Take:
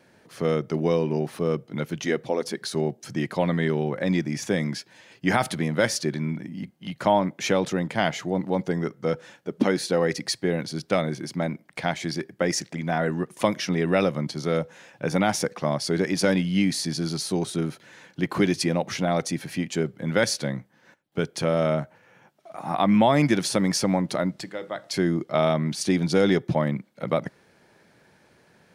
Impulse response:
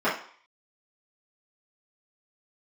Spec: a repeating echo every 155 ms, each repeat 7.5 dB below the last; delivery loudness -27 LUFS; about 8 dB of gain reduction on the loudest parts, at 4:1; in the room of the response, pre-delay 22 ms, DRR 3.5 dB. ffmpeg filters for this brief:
-filter_complex "[0:a]acompressor=threshold=0.0562:ratio=4,aecho=1:1:155|310|465|620|775:0.422|0.177|0.0744|0.0312|0.0131,asplit=2[s0][s1];[1:a]atrim=start_sample=2205,adelay=22[s2];[s1][s2]afir=irnorm=-1:irlink=0,volume=0.106[s3];[s0][s3]amix=inputs=2:normalize=0,volume=1.19"

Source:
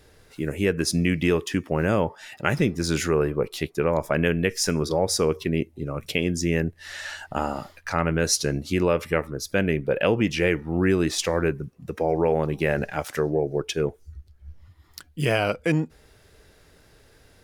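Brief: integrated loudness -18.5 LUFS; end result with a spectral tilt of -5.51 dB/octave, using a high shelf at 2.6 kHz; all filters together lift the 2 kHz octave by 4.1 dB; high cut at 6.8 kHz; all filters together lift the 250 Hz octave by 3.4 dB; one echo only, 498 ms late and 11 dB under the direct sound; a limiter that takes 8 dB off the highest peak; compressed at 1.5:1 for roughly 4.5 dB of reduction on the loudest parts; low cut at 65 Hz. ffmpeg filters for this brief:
-af "highpass=65,lowpass=6800,equalizer=f=250:t=o:g=5,equalizer=f=2000:t=o:g=8.5,highshelf=f=2600:g=-7.5,acompressor=threshold=0.0447:ratio=1.5,alimiter=limit=0.211:level=0:latency=1,aecho=1:1:498:0.282,volume=2.82"

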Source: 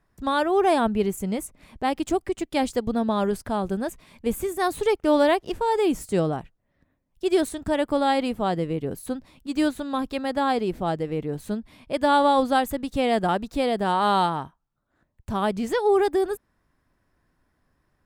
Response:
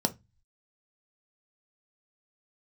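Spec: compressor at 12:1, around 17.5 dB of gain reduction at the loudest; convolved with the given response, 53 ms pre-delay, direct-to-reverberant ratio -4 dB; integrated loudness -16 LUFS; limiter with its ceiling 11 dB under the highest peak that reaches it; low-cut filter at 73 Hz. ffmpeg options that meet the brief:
-filter_complex "[0:a]highpass=73,acompressor=threshold=0.0224:ratio=12,alimiter=level_in=2.66:limit=0.0631:level=0:latency=1,volume=0.376,asplit=2[s0][s1];[1:a]atrim=start_sample=2205,adelay=53[s2];[s1][s2]afir=irnorm=-1:irlink=0,volume=0.668[s3];[s0][s3]amix=inputs=2:normalize=0,volume=5.96"

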